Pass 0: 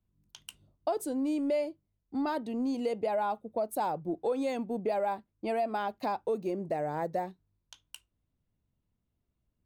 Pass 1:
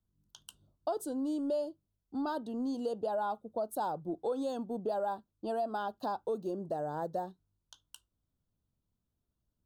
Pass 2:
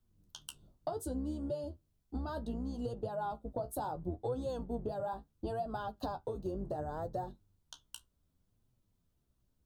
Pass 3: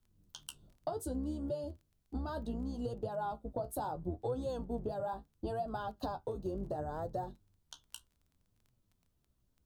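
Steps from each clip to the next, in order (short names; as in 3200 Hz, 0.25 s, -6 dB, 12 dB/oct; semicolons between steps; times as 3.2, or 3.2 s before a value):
Chebyshev band-stop 1500–3200 Hz, order 2; gain -2.5 dB
octaver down 2 oct, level +1 dB; compressor 6:1, threshold -40 dBFS, peak gain reduction 11.5 dB; flange 0.69 Hz, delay 7.6 ms, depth 9.1 ms, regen +38%; gain +8.5 dB
crackle 13/s -53 dBFS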